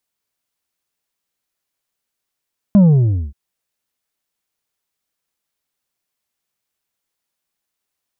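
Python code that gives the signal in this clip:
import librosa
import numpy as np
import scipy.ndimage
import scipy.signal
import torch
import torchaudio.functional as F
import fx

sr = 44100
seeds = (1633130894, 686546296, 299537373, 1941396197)

y = fx.sub_drop(sr, level_db=-6.0, start_hz=210.0, length_s=0.58, drive_db=5, fade_s=0.56, end_hz=65.0)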